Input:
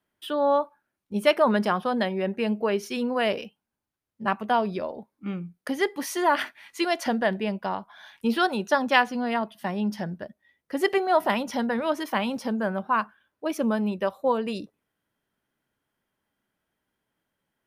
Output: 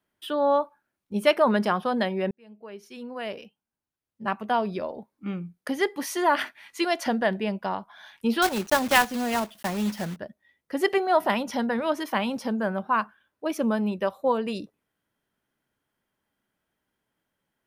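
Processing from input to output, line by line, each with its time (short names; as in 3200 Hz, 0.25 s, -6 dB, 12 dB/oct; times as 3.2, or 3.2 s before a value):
2.31–4.96 fade in
8.42–10.18 block floating point 3-bit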